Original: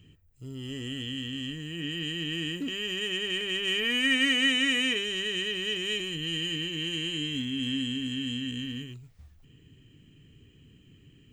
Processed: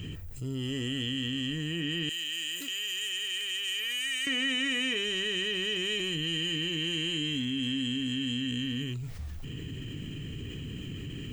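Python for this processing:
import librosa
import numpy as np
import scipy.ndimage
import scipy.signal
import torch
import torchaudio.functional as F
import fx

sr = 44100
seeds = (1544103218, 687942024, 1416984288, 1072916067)

y = fx.differentiator(x, sr, at=(2.09, 4.27))
y = fx.env_flatten(y, sr, amount_pct=70)
y = y * 10.0 ** (-6.5 / 20.0)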